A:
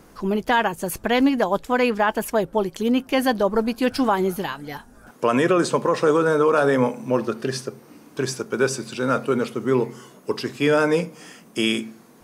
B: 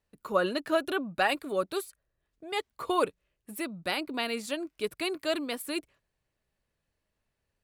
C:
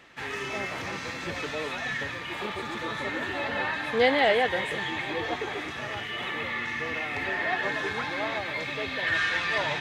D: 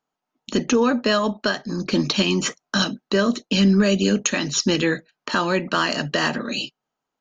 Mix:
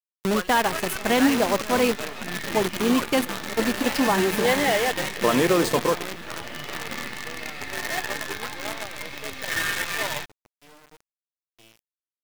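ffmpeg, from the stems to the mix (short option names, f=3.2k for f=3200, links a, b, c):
-filter_complex "[0:a]adynamicequalizer=threshold=0.0112:dfrequency=1700:dqfactor=1.5:tfrequency=1700:tqfactor=1.5:attack=5:release=100:ratio=0.375:range=4:mode=cutabove:tftype=bell,volume=-1.5dB[a];[1:a]bandpass=f=1.7k:t=q:w=0.99:csg=0,volume=0dB,asplit=2[b][c];[2:a]adelay=450,volume=-0.5dB[d];[3:a]lowpass=1.8k,alimiter=limit=-19dB:level=0:latency=1:release=105,adelay=550,volume=-7dB,asplit=2[e][f];[f]volume=-10dB[g];[c]apad=whole_len=539408[h];[a][h]sidechaingate=range=-30dB:threshold=-57dB:ratio=16:detection=peak[i];[g]aecho=0:1:423|846|1269|1692|2115|2538|2961|3384|3807:1|0.57|0.325|0.185|0.106|0.0602|0.0343|0.0195|0.0111[j];[i][b][d][e][j]amix=inputs=5:normalize=0,acrusher=bits=5:dc=4:mix=0:aa=0.000001"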